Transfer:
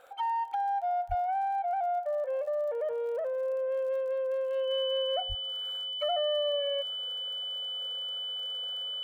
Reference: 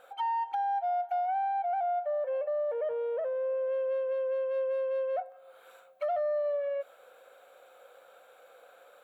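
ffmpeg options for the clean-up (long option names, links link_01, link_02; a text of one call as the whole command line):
ffmpeg -i in.wav -filter_complex "[0:a]adeclick=threshold=4,bandreject=frequency=3000:width=30,asplit=3[link_01][link_02][link_03];[link_01]afade=type=out:start_time=1.08:duration=0.02[link_04];[link_02]highpass=frequency=140:width=0.5412,highpass=frequency=140:width=1.3066,afade=type=in:start_time=1.08:duration=0.02,afade=type=out:start_time=1.2:duration=0.02[link_05];[link_03]afade=type=in:start_time=1.2:duration=0.02[link_06];[link_04][link_05][link_06]amix=inputs=3:normalize=0,asplit=3[link_07][link_08][link_09];[link_07]afade=type=out:start_time=5.28:duration=0.02[link_10];[link_08]highpass=frequency=140:width=0.5412,highpass=frequency=140:width=1.3066,afade=type=in:start_time=5.28:duration=0.02,afade=type=out:start_time=5.4:duration=0.02[link_11];[link_09]afade=type=in:start_time=5.4:duration=0.02[link_12];[link_10][link_11][link_12]amix=inputs=3:normalize=0" out.wav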